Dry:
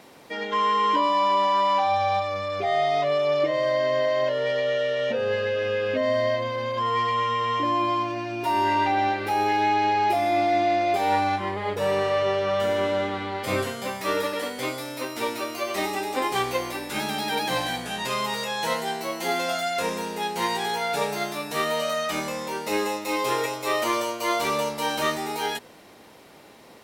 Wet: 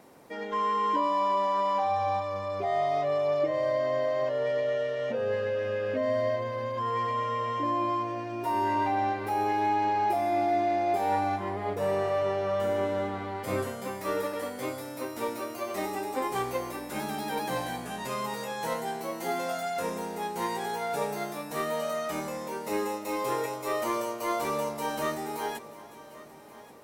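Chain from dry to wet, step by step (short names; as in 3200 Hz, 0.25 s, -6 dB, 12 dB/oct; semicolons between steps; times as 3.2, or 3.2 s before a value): bell 3400 Hz -9.5 dB 1.8 oct; on a send: multi-head echo 0.377 s, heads first and third, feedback 47%, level -19 dB; on the sum: gain -3.5 dB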